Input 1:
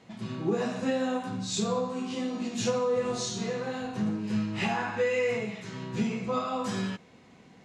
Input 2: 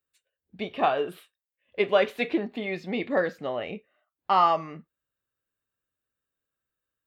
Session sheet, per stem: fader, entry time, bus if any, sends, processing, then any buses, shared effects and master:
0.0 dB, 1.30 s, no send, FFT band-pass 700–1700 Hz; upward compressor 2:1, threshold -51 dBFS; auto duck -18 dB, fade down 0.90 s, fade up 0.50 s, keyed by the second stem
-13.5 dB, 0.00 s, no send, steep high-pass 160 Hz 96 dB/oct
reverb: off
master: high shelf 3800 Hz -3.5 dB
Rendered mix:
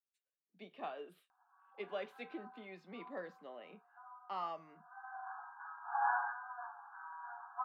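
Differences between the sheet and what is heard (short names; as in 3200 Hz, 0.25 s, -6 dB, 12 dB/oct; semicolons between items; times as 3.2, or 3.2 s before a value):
stem 2 -13.5 dB -> -20.5 dB; master: missing high shelf 3800 Hz -3.5 dB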